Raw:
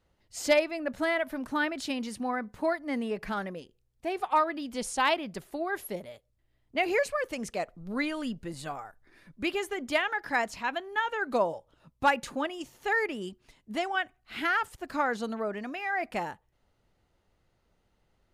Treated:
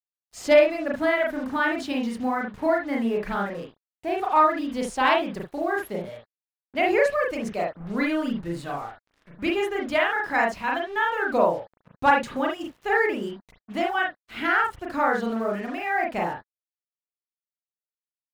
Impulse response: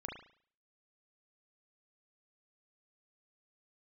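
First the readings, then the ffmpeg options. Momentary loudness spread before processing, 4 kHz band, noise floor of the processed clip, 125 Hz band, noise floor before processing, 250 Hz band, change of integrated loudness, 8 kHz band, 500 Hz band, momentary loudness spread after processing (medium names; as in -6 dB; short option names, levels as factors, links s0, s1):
12 LU, +2.0 dB, under -85 dBFS, +7.0 dB, -73 dBFS, +6.5 dB, +6.0 dB, -3.0 dB, +7.0 dB, 12 LU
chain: -filter_complex "[0:a]acrusher=bits=7:mix=0:aa=0.5,highshelf=f=4500:g=-7.5[s0];[1:a]atrim=start_sample=2205,atrim=end_sample=3528[s1];[s0][s1]afir=irnorm=-1:irlink=0,volume=2.37"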